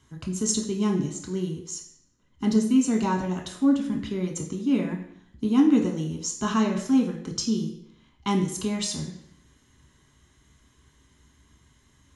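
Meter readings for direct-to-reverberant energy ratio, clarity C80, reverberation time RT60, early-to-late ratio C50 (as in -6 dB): 1.0 dB, 10.5 dB, 0.70 s, 8.0 dB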